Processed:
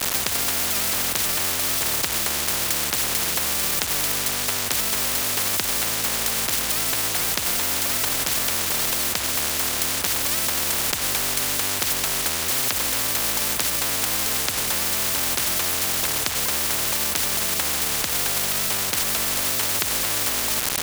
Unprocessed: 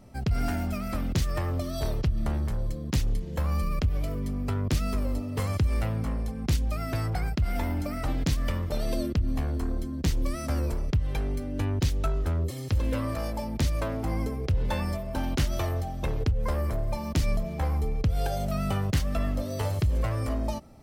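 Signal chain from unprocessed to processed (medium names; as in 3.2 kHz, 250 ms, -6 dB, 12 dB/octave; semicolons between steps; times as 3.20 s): high-pass 63 Hz 24 dB/octave; in parallel at -1.5 dB: compressor with a negative ratio -33 dBFS, ratio -1; on the sum: bit crusher 7-bit; loudness maximiser +23 dB; spectrum-flattening compressor 10:1; trim -3 dB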